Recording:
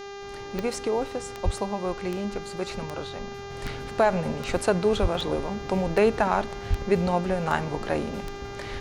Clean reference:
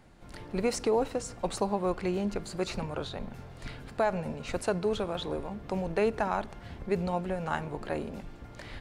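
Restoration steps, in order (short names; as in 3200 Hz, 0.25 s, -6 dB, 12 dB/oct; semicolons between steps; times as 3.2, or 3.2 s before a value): de-click; de-hum 400 Hz, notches 17; 1.44–1.56 HPF 140 Hz 24 dB/oct; 3.5 gain correction -6.5 dB; 5.01–5.13 HPF 140 Hz 24 dB/oct; 6.69–6.81 HPF 140 Hz 24 dB/oct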